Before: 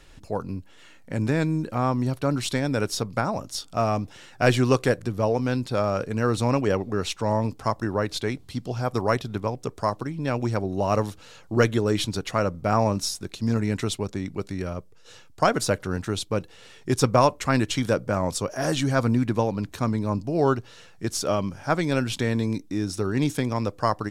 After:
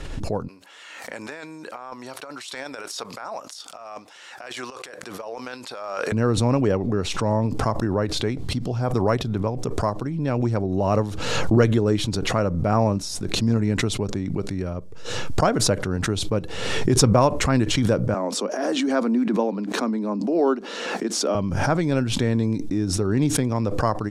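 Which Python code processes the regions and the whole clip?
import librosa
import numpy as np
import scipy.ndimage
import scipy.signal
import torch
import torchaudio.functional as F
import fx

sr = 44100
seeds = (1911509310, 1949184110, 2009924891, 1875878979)

y = fx.chain(x, sr, fx.highpass(hz=920.0, slope=12),
    fx.over_compress(threshold_db=-35.0, ratio=-0.5), at=(0.48, 6.12))
y = fx.chain(y, sr, fx.steep_highpass(hz=200.0, slope=72),
    fx.high_shelf(hz=9300.0, db=-9.0), at=(18.14, 21.35))
y = scipy.signal.sosfilt(scipy.signal.butter(2, 11000.0, 'lowpass', fs=sr, output='sos'), y)
y = fx.tilt_shelf(y, sr, db=4.0, hz=970.0)
y = fx.pre_swell(y, sr, db_per_s=33.0)
y = y * 10.0 ** (-1.0 / 20.0)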